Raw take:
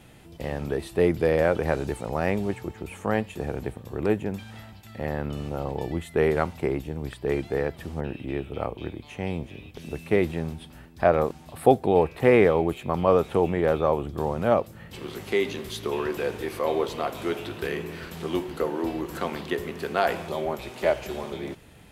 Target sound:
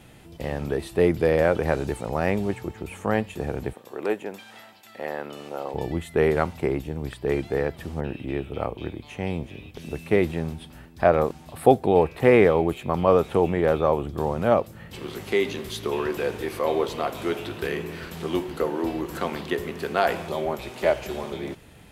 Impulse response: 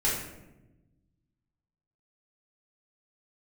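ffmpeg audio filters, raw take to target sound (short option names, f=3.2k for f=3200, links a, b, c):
-filter_complex "[0:a]asettb=1/sr,asplit=3[a][b][c];[a]atrim=end=3.734[d];[b]atrim=start=3.73:end=5.74,asetpts=PTS-STARTPTS,afade=t=in:d=0.004:c=qsin,afade=t=out:st=2.006:d=0.004:c=qsin,highpass=400[e];[c]atrim=start=5.736[f];[d][e]acrossfade=d=0.004:c1=hsin:c2=qsin[g];[g][f]acrossfade=d=0.004:c1=qsin:c2=hsin,volume=1.5dB"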